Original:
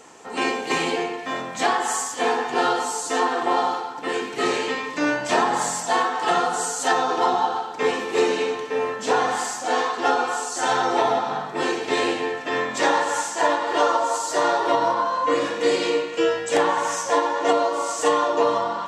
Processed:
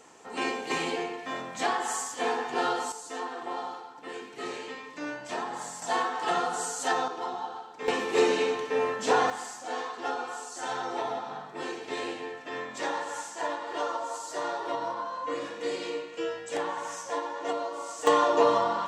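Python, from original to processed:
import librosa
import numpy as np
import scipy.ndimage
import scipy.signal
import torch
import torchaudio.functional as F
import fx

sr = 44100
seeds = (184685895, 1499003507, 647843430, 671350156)

y = fx.gain(x, sr, db=fx.steps((0.0, -7.0), (2.92, -14.0), (5.82, -7.0), (7.08, -14.0), (7.88, -3.0), (9.3, -12.0), (18.07, -2.0)))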